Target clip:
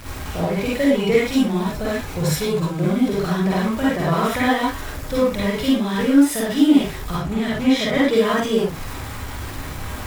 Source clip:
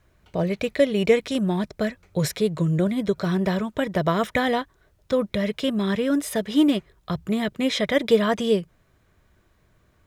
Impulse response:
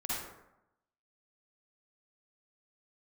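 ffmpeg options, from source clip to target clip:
-filter_complex "[0:a]aeval=exprs='val(0)+0.5*0.0422*sgn(val(0))':c=same,asettb=1/sr,asplit=3[s0][s1][s2];[s0]atrim=end=1.684[s3];[s1]atrim=start=1.68:end=3.08,asetpts=PTS-STARTPTS,afade=t=in:d=0.004:c=qsin,afade=t=out:st=1.396:d=0.004:c=qsin,bandreject=f=1900:w=14[s4];[s2]atrim=start=3.076[s5];[s3][s4]acrossfade=d=0.004:c1=hsin:c2=qsin[s6];[s6][s5]acrossfade=d=0.004:c1=qsin:c2=hsin,asettb=1/sr,asplit=3[s7][s8][s9];[s7]atrim=end=7.124[s10];[s8]atrim=start=7.12:end=8.11,asetpts=PTS-STARTPTS,afade=t=in:d=0.004:c=qsin,afade=t=out:st=0.986:d=0.004:c=qsin,highshelf=f=7800:g=-7[s11];[s9]atrim=start=8.106[s12];[s10][s11]acrossfade=d=0.004:c1=hsin:c2=qsin[s13];[s13][s12]acrossfade=d=0.004:c1=qsin:c2=hsin[s14];[1:a]atrim=start_sample=2205,atrim=end_sample=6174,asetrate=48510,aresample=44100[s15];[s14][s15]afir=irnorm=-1:irlink=0"

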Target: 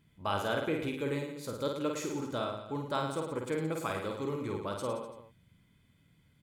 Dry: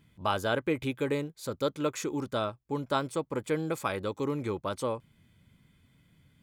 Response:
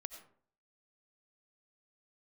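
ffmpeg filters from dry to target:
-af "aecho=1:1:50|107.5|173.6|249.7|337.1:0.631|0.398|0.251|0.158|0.1,volume=0.562"

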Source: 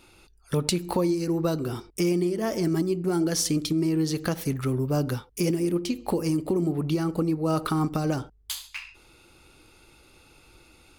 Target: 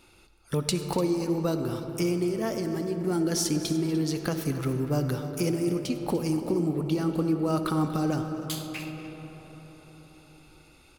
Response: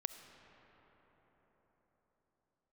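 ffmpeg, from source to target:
-filter_complex "[0:a]asettb=1/sr,asplit=3[s0][s1][s2];[s0]atrim=end=2.504[s3];[s1]atrim=start=2.5:end=2.97,asetpts=PTS-STARTPTS,afade=t=in:d=0.004:c=qsin,afade=t=out:st=0.466:d=0.004:c=qsin,acompressor=threshold=0.0501:ratio=3[s4];[s2]atrim=start=2.966[s5];[s3][s4]acrossfade=d=0.004:c1=hsin:c2=qsin[s6];[s6][s5]acrossfade=d=0.004:c1=qsin:c2=hsin,aecho=1:1:241|296:0.158|0.158[s7];[1:a]atrim=start_sample=2205[s8];[s7][s8]afir=irnorm=-1:irlink=0"

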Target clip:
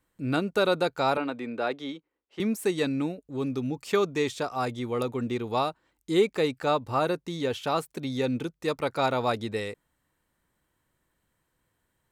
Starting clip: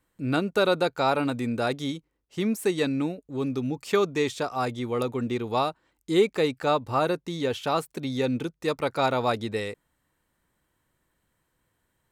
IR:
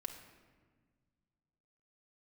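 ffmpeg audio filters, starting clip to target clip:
-filter_complex "[0:a]asettb=1/sr,asplit=3[s0][s1][s2];[s0]atrim=end=1.174[s3];[s1]atrim=start=1.17:end=2.4,asetpts=PTS-STARTPTS,afade=t=in:d=0.004:c=qsin,afade=t=out:st=1.226:d=0.004:c=qsin,acrossover=split=250 4000:gain=0.126 1 0.126[s4][s5][s6];[s4][s5][s6]amix=inputs=3:normalize=0[s7];[s2]atrim=start=2.396[s8];[s3][s7]acrossfade=d=0.004:c1=hsin:c2=qsin[s9];[s9][s8]acrossfade=d=0.004:c1=qsin:c2=hsin,volume=0.841"

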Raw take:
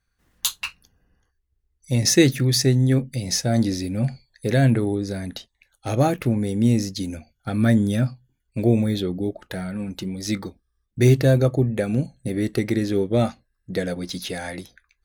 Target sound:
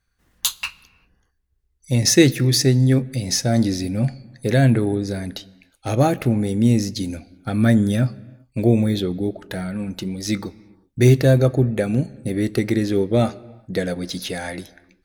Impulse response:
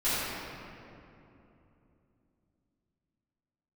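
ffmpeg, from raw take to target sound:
-filter_complex "[0:a]asplit=2[s0][s1];[1:a]atrim=start_sample=2205,afade=t=out:st=0.45:d=0.01,atrim=end_sample=20286[s2];[s1][s2]afir=irnorm=-1:irlink=0,volume=0.0266[s3];[s0][s3]amix=inputs=2:normalize=0,volume=1.26"

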